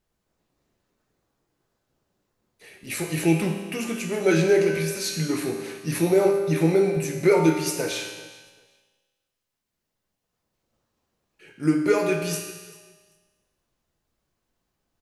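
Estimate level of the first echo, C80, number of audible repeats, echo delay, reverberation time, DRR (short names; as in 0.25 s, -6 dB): -22.5 dB, 6.5 dB, 1, 0.392 s, 1.5 s, 2.0 dB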